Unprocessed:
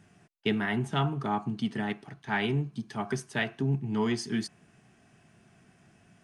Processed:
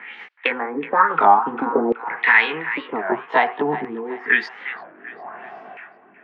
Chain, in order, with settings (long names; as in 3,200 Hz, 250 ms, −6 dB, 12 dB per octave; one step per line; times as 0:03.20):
pitch glide at a constant tempo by +3 semitones ending unshifted
three-way crossover with the lows and the highs turned down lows −20 dB, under 230 Hz, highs −18 dB, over 2,600 Hz
downward compressor, threshold −41 dBFS, peak gain reduction 13.5 dB
auto-filter low-pass sine 0.94 Hz 350–5,100 Hz
high-shelf EQ 8,000 Hz +9.5 dB
auto-filter band-pass saw down 0.52 Hz 700–2,400 Hz
on a send: delay with a band-pass on its return 373 ms, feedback 47%, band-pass 1,500 Hz, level −13.5 dB
on the sum: boost into a limiter +35.5 dB
wow of a warped record 33 1/3 rpm, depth 250 cents
level −1.5 dB